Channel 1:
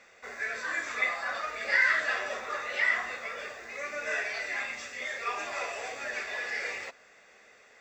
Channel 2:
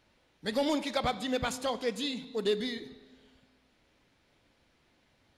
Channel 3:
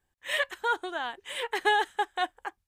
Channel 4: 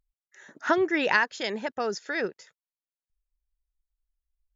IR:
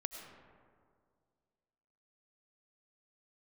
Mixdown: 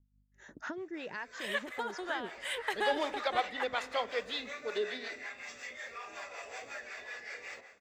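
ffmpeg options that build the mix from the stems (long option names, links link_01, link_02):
-filter_complex "[0:a]bandreject=frequency=76.89:width_type=h:width=4,bandreject=frequency=153.78:width_type=h:width=4,bandreject=frequency=230.67:width_type=h:width=4,bandreject=frequency=307.56:width_type=h:width=4,bandreject=frequency=384.45:width_type=h:width=4,bandreject=frequency=461.34:width_type=h:width=4,bandreject=frequency=538.23:width_type=h:width=4,bandreject=frequency=615.12:width_type=h:width=4,bandreject=frequency=692.01:width_type=h:width=4,bandreject=frequency=768.9:width_type=h:width=4,bandreject=frequency=845.79:width_type=h:width=4,bandreject=frequency=922.68:width_type=h:width=4,bandreject=frequency=999.57:width_type=h:width=4,bandreject=frequency=1076.46:width_type=h:width=4,bandreject=frequency=1153.35:width_type=h:width=4,bandreject=frequency=1230.24:width_type=h:width=4,bandreject=frequency=1307.13:width_type=h:width=4,bandreject=frequency=1384.02:width_type=h:width=4,bandreject=frequency=1460.91:width_type=h:width=4,bandreject=frequency=1537.8:width_type=h:width=4,bandreject=frequency=1614.69:width_type=h:width=4,bandreject=frequency=1691.58:width_type=h:width=4,bandreject=frequency=1768.47:width_type=h:width=4,bandreject=frequency=1845.36:width_type=h:width=4,bandreject=frequency=1922.25:width_type=h:width=4,bandreject=frequency=1999.14:width_type=h:width=4,bandreject=frequency=2076.03:width_type=h:width=4,bandreject=frequency=2152.92:width_type=h:width=4,bandreject=frequency=2229.81:width_type=h:width=4,bandreject=frequency=2306.7:width_type=h:width=4,bandreject=frequency=2383.59:width_type=h:width=4,bandreject=frequency=2460.48:width_type=h:width=4,bandreject=frequency=2537.37:width_type=h:width=4,bandreject=frequency=2614.26:width_type=h:width=4,acompressor=threshold=-36dB:ratio=6,adelay=700,volume=-2dB,asplit=2[link_01][link_02];[link_02]volume=-11dB[link_03];[1:a]acrossover=split=370 4300:gain=0.0794 1 0.126[link_04][link_05][link_06];[link_04][link_05][link_06]amix=inputs=3:normalize=0,adelay=2300,volume=2dB[link_07];[2:a]acompressor=threshold=-29dB:ratio=2.5,adelay=1150,volume=-2.5dB,asplit=2[link_08][link_09];[link_09]volume=-9dB[link_10];[3:a]agate=range=-14dB:threshold=-52dB:ratio=16:detection=peak,lowshelf=frequency=470:gain=8,aeval=exprs='val(0)+0.000708*(sin(2*PI*50*n/s)+sin(2*PI*2*50*n/s)/2+sin(2*PI*3*50*n/s)/3+sin(2*PI*4*50*n/s)/4+sin(2*PI*5*50*n/s)/5)':channel_layout=same,volume=-3dB,asplit=2[link_11][link_12];[link_12]apad=whole_len=375039[link_13];[link_01][link_13]sidechaincompress=threshold=-34dB:ratio=8:attack=16:release=119[link_14];[link_14][link_11]amix=inputs=2:normalize=0,acompressor=threshold=-40dB:ratio=3,volume=0dB[link_15];[4:a]atrim=start_sample=2205[link_16];[link_03][link_10]amix=inputs=2:normalize=0[link_17];[link_17][link_16]afir=irnorm=-1:irlink=0[link_18];[link_07][link_08][link_15][link_18]amix=inputs=4:normalize=0,acrossover=split=450[link_19][link_20];[link_19]aeval=exprs='val(0)*(1-0.7/2+0.7/2*cos(2*PI*5.4*n/s))':channel_layout=same[link_21];[link_20]aeval=exprs='val(0)*(1-0.7/2-0.7/2*cos(2*PI*5.4*n/s))':channel_layout=same[link_22];[link_21][link_22]amix=inputs=2:normalize=0"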